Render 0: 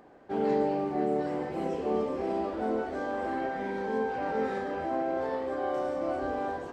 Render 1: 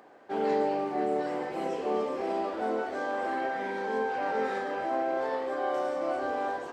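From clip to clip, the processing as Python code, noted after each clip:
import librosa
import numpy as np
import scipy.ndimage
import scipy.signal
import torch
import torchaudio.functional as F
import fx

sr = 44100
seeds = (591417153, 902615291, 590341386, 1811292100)

y = fx.highpass(x, sr, hz=580.0, slope=6)
y = y * librosa.db_to_amplitude(4.0)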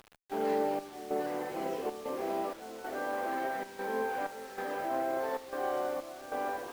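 y = fx.step_gate(x, sr, bpm=95, pattern='x.xxx..xxxx', floor_db=-12.0, edge_ms=4.5)
y = fx.quant_dither(y, sr, seeds[0], bits=8, dither='none')
y = fx.running_max(y, sr, window=3)
y = y * librosa.db_to_amplitude(-3.0)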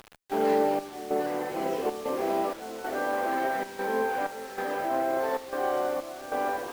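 y = fx.rider(x, sr, range_db=10, speed_s=2.0)
y = y * librosa.db_to_amplitude(5.0)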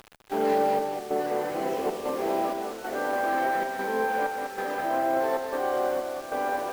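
y = x + 10.0 ** (-5.5 / 20.0) * np.pad(x, (int(202 * sr / 1000.0), 0))[:len(x)]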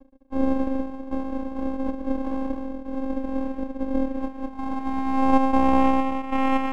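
y = fx.filter_sweep_lowpass(x, sr, from_hz=240.0, to_hz=930.0, start_s=4.03, end_s=6.41, q=5.8)
y = fx.vocoder(y, sr, bands=4, carrier='square', carrier_hz=266.0)
y = np.maximum(y, 0.0)
y = y * librosa.db_to_amplitude(4.5)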